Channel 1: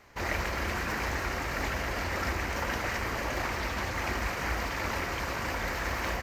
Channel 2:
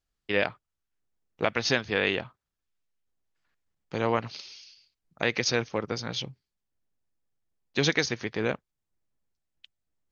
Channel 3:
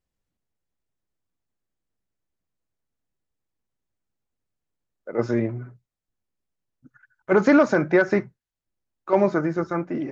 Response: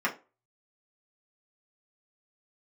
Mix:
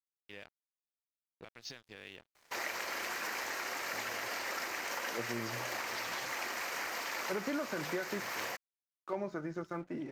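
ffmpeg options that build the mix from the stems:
-filter_complex "[0:a]highpass=400,adelay=2350,volume=-2.5dB[link_01];[1:a]alimiter=limit=-17dB:level=0:latency=1:release=151,volume=-19dB[link_02];[2:a]volume=-10.5dB[link_03];[link_01][link_02][link_03]amix=inputs=3:normalize=0,highshelf=frequency=3300:gain=8,aeval=exprs='sgn(val(0))*max(abs(val(0))-0.00119,0)':channel_layout=same,acompressor=threshold=-36dB:ratio=3"

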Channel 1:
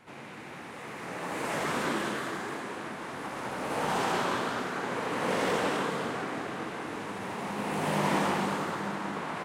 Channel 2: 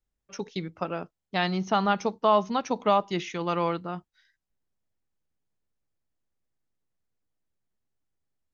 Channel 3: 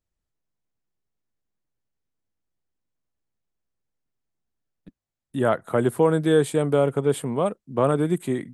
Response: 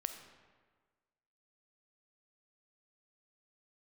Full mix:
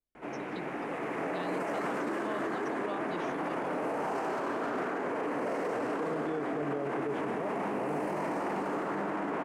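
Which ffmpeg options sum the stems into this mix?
-filter_complex "[0:a]aeval=exprs='val(0)+0.00112*(sin(2*PI*50*n/s)+sin(2*PI*2*50*n/s)/2+sin(2*PI*3*50*n/s)/3+sin(2*PI*4*50*n/s)/4+sin(2*PI*5*50*n/s)/5)':channel_layout=same,adelay=150,volume=2dB,asplit=2[link_01][link_02];[link_02]volume=-8.5dB[link_03];[1:a]volume=-13.5dB[link_04];[2:a]volume=-13dB[link_05];[link_01][link_05]amix=inputs=2:normalize=0,highpass=frequency=140:width=0.5412,highpass=frequency=140:width=1.3066,equalizer=frequency=140:width_type=q:width=4:gain=5,equalizer=frequency=290:width_type=q:width=4:gain=9,equalizer=frequency=420:width_type=q:width=4:gain=6,equalizer=frequency=660:width_type=q:width=4:gain=7,lowpass=frequency=3400:width=0.5412,lowpass=frequency=3400:width=1.3066,acompressor=threshold=-26dB:ratio=2.5,volume=0dB[link_06];[3:a]atrim=start_sample=2205[link_07];[link_03][link_07]afir=irnorm=-1:irlink=0[link_08];[link_04][link_06][link_08]amix=inputs=3:normalize=0,alimiter=level_in=1.5dB:limit=-24dB:level=0:latency=1:release=29,volume=-1.5dB"

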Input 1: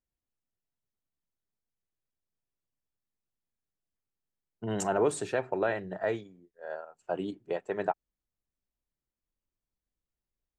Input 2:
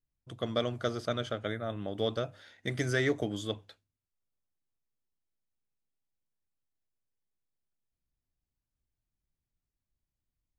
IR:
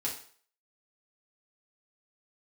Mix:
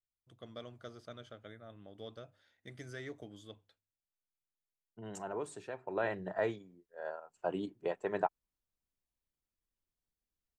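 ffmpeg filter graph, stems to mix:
-filter_complex "[0:a]adelay=350,volume=-3dB,afade=type=in:start_time=5.85:duration=0.25:silence=0.298538[link_01];[1:a]volume=-16.5dB[link_02];[link_01][link_02]amix=inputs=2:normalize=0,adynamicequalizer=threshold=0.001:dfrequency=1000:dqfactor=5.3:tfrequency=1000:tqfactor=5.3:attack=5:release=100:ratio=0.375:range=2.5:mode=boostabove:tftype=bell"

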